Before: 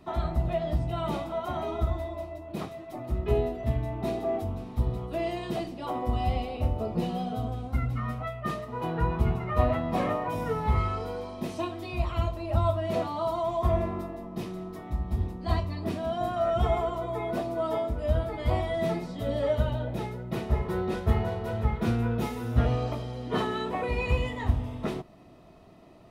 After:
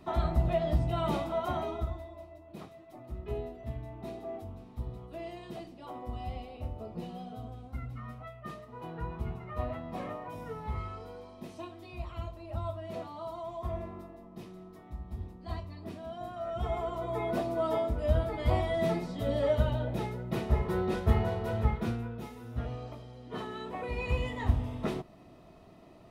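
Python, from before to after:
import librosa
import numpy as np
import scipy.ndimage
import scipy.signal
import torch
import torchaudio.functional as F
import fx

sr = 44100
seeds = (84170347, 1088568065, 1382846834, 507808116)

y = fx.gain(x, sr, db=fx.line((1.52, 0.0), (2.06, -11.0), (16.44, -11.0), (17.18, -1.0), (21.68, -1.0), (22.12, -12.0), (23.23, -12.0), (24.5, -1.5)))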